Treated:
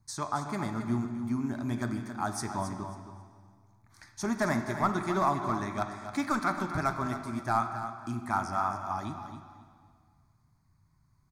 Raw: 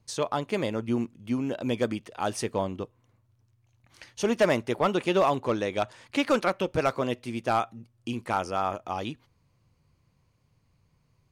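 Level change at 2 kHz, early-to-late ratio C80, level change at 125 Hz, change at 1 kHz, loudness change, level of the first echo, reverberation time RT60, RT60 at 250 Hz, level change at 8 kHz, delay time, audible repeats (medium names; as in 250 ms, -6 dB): -2.5 dB, 6.5 dB, +0.5 dB, -0.5 dB, -3.5 dB, -10.0 dB, 1.9 s, 1.9 s, -1.5 dB, 270 ms, 2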